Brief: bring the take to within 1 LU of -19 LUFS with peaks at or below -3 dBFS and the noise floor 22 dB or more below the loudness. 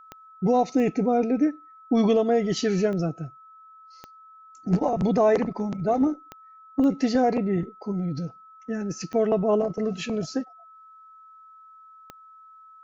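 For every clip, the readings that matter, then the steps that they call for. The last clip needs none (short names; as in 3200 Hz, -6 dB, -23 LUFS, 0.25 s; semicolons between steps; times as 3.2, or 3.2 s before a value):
clicks 8; steady tone 1300 Hz; tone level -47 dBFS; loudness -24.5 LUFS; peak -11.5 dBFS; loudness target -19.0 LUFS
-> de-click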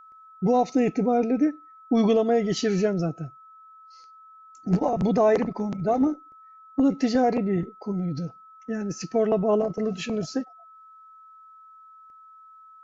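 clicks 0; steady tone 1300 Hz; tone level -47 dBFS
-> notch 1300 Hz, Q 30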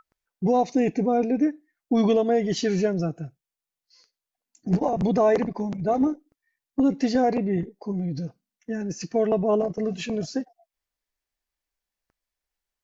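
steady tone none; loudness -24.5 LUFS; peak -11.5 dBFS; loudness target -19.0 LUFS
-> gain +5.5 dB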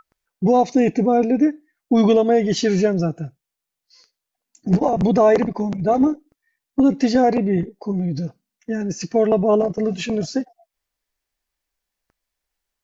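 loudness -19.0 LUFS; peak -6.0 dBFS; noise floor -84 dBFS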